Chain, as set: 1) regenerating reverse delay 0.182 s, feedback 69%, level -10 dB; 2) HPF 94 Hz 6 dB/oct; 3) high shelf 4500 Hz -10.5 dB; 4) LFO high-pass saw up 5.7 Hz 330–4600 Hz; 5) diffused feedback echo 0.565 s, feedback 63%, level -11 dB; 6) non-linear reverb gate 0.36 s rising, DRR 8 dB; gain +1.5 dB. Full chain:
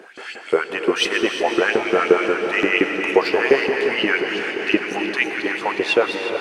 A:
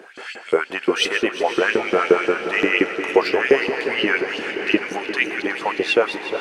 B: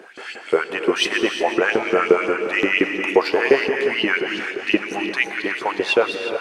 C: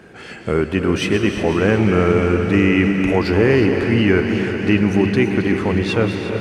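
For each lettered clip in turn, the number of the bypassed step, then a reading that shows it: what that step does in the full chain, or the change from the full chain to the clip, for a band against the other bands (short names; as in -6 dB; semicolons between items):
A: 6, echo-to-direct -5.0 dB to -9.0 dB; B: 5, echo-to-direct -5.0 dB to -8.0 dB; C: 4, 125 Hz band +25.5 dB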